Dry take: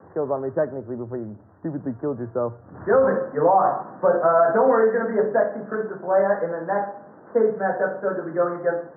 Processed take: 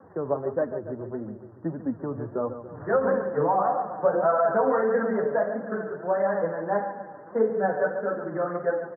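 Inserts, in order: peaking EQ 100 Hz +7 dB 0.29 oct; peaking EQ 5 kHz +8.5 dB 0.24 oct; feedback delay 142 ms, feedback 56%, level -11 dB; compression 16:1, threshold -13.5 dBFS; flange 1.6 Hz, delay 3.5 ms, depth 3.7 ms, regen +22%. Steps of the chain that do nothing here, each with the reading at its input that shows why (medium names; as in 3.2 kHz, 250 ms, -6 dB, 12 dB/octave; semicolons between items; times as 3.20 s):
peaking EQ 5 kHz: input has nothing above 1.8 kHz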